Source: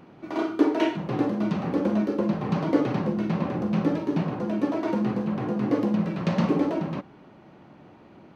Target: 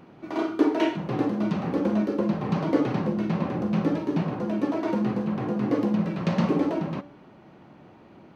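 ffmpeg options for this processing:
ffmpeg -i in.wav -af "bandreject=frequency=289.4:width_type=h:width=4,bandreject=frequency=578.8:width_type=h:width=4,bandreject=frequency=868.2:width_type=h:width=4,bandreject=frequency=1157.6:width_type=h:width=4,bandreject=frequency=1447:width_type=h:width=4,bandreject=frequency=1736.4:width_type=h:width=4,bandreject=frequency=2025.8:width_type=h:width=4,bandreject=frequency=2315.2:width_type=h:width=4,bandreject=frequency=2604.6:width_type=h:width=4,bandreject=frequency=2894:width_type=h:width=4,bandreject=frequency=3183.4:width_type=h:width=4,bandreject=frequency=3472.8:width_type=h:width=4,bandreject=frequency=3762.2:width_type=h:width=4,bandreject=frequency=4051.6:width_type=h:width=4,bandreject=frequency=4341:width_type=h:width=4,bandreject=frequency=4630.4:width_type=h:width=4,bandreject=frequency=4919.8:width_type=h:width=4,bandreject=frequency=5209.2:width_type=h:width=4,bandreject=frequency=5498.6:width_type=h:width=4,bandreject=frequency=5788:width_type=h:width=4,bandreject=frequency=6077.4:width_type=h:width=4,bandreject=frequency=6366.8:width_type=h:width=4,bandreject=frequency=6656.2:width_type=h:width=4,bandreject=frequency=6945.6:width_type=h:width=4,bandreject=frequency=7235:width_type=h:width=4,bandreject=frequency=7524.4:width_type=h:width=4,bandreject=frequency=7813.8:width_type=h:width=4,bandreject=frequency=8103.2:width_type=h:width=4,bandreject=frequency=8392.6:width_type=h:width=4,bandreject=frequency=8682:width_type=h:width=4,bandreject=frequency=8971.4:width_type=h:width=4" out.wav

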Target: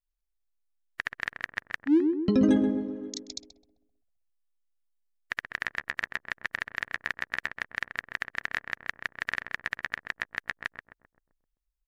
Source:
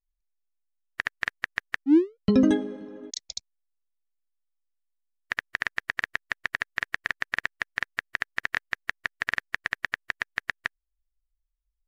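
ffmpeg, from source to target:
ffmpeg -i in.wav -filter_complex "[0:a]asplit=2[link_01][link_02];[link_02]adelay=130,lowpass=frequency=1100:poles=1,volume=-4.5dB,asplit=2[link_03][link_04];[link_04]adelay=130,lowpass=frequency=1100:poles=1,volume=0.54,asplit=2[link_05][link_06];[link_06]adelay=130,lowpass=frequency=1100:poles=1,volume=0.54,asplit=2[link_07][link_08];[link_08]adelay=130,lowpass=frequency=1100:poles=1,volume=0.54,asplit=2[link_09][link_10];[link_10]adelay=130,lowpass=frequency=1100:poles=1,volume=0.54,asplit=2[link_11][link_12];[link_12]adelay=130,lowpass=frequency=1100:poles=1,volume=0.54,asplit=2[link_13][link_14];[link_14]adelay=130,lowpass=frequency=1100:poles=1,volume=0.54[link_15];[link_01][link_03][link_05][link_07][link_09][link_11][link_13][link_15]amix=inputs=8:normalize=0,volume=-3.5dB" out.wav

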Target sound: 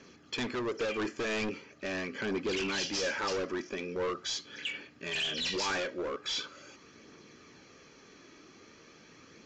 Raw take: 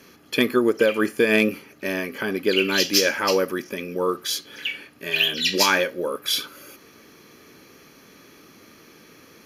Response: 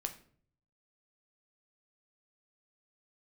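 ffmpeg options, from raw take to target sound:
-af "volume=24.5dB,asoftclip=hard,volume=-24.5dB,aphaser=in_gain=1:out_gain=1:delay=3.2:decay=0.27:speed=0.42:type=triangular,aresample=16000,aresample=44100,volume=-6dB"

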